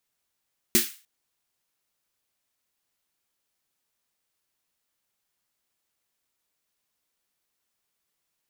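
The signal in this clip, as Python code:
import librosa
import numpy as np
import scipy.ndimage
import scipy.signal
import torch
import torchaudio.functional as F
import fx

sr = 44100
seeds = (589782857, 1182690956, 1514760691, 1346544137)

y = fx.drum_snare(sr, seeds[0], length_s=0.3, hz=230.0, second_hz=350.0, noise_db=3.5, noise_from_hz=1600.0, decay_s=0.17, noise_decay_s=0.36)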